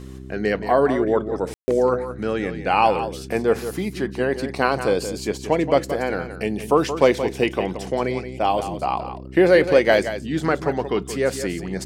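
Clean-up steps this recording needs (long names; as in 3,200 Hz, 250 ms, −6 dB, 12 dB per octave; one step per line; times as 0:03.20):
hum removal 64.9 Hz, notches 6
ambience match 0:01.54–0:01.68
echo removal 175 ms −10.5 dB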